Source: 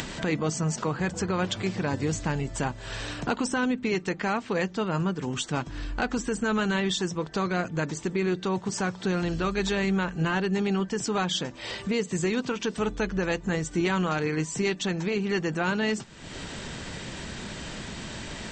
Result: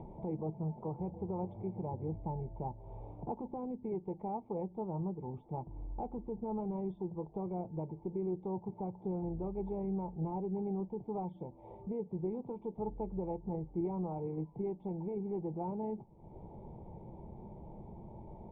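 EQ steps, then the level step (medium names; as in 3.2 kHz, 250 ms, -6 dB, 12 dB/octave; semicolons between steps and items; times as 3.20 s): cascade formant filter u; static phaser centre 680 Hz, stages 4; +7.0 dB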